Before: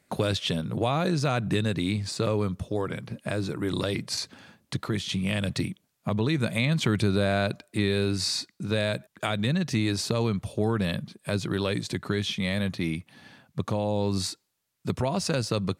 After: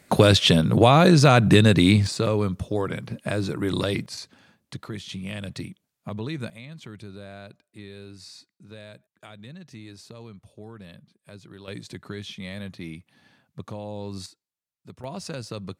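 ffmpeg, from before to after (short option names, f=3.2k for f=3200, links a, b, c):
-af "asetnsamples=n=441:p=0,asendcmd='2.07 volume volume 3dB;4.06 volume volume -6dB;6.5 volume volume -17dB;11.68 volume volume -8dB;14.26 volume volume -16dB;15.04 volume volume -7.5dB',volume=10.5dB"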